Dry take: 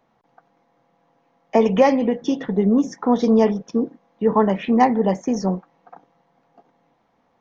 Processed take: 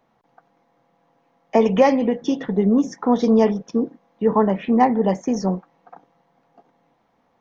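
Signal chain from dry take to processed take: 4.36–5.02 s: treble shelf 2.8 kHz -> 4 kHz -10.5 dB

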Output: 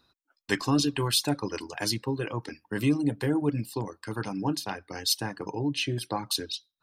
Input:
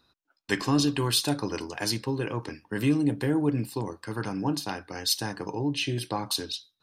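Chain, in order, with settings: reverb removal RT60 0.62 s

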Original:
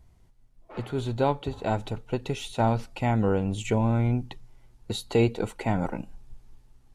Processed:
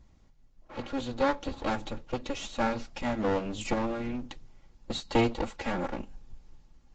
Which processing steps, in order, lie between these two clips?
comb filter that takes the minimum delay 3.6 ms; Vorbis 48 kbps 16 kHz

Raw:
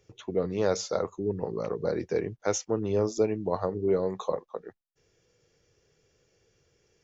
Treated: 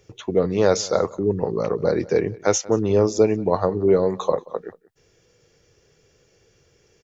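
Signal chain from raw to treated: echo from a far wall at 31 m, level -22 dB; trim +8.5 dB

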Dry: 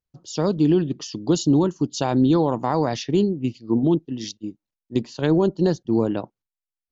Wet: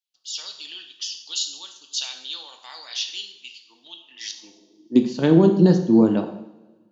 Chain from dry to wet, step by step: two-slope reverb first 0.72 s, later 1.9 s, from -19 dB, DRR 4 dB; high-pass sweep 3.3 kHz -> 190 Hz, 3.98–5.07 s

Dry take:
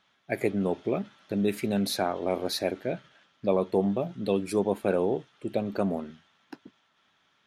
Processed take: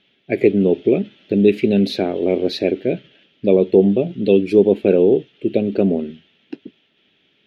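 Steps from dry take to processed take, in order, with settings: FFT filter 110 Hz 0 dB, 410 Hz +8 dB, 1.1 kHz -17 dB, 2.8 kHz +6 dB, 8.7 kHz -20 dB; trim +7.5 dB

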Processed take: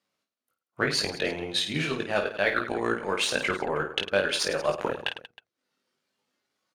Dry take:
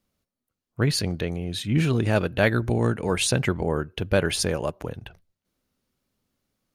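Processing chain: tracing distortion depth 0.02 ms; frequency weighting A; spectral noise reduction 6 dB; treble shelf 10 kHz -10.5 dB; hum notches 60/120/180/240/300/360/420/480 Hz; reverse; compression 5:1, threshold -34 dBFS, peak gain reduction 16 dB; reverse; transient shaper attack +8 dB, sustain -10 dB; on a send: reverse bouncing-ball echo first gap 20 ms, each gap 1.6×, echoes 5; on the sum: trim +5.5 dB

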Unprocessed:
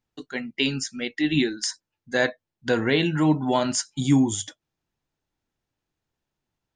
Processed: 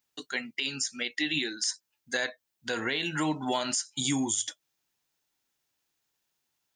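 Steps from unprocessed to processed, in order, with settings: tilt EQ +3.5 dB/octave; compression 6:1, threshold -24 dBFS, peak gain reduction 11.5 dB; peak limiter -17.5 dBFS, peak gain reduction 9 dB

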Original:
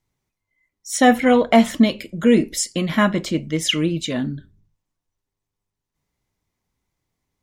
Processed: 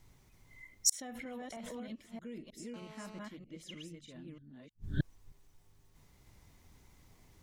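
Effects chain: chunks repeated in reverse 313 ms, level -1.5 dB; bass shelf 91 Hz +7.5 dB; peak limiter -7 dBFS, peak gain reduction 9 dB; inverted gate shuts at -24 dBFS, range -41 dB; 0.92–1.91 s: swell ahead of each attack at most 22 dB/s; 2.74–3.19 s: mobile phone buzz -65 dBFS; trim +11 dB

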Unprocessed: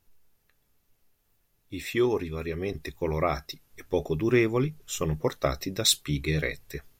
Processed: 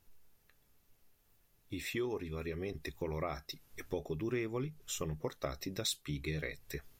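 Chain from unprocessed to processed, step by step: compression 2.5:1, threshold -40 dBFS, peak gain reduction 15 dB

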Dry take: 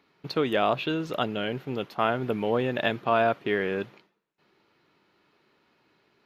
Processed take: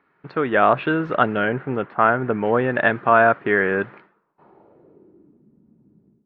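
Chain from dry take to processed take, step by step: low-pass sweep 1.6 kHz -> 210 Hz, 4.05–5.48 s; level rider gain up to 14.5 dB; 1.45–2.45 s: Gaussian low-pass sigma 2.2 samples; trim -1 dB

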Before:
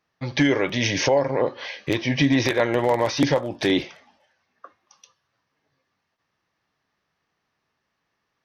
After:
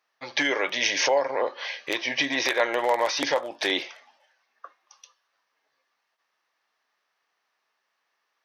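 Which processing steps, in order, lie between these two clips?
high-pass 620 Hz 12 dB/octave; trim +1 dB

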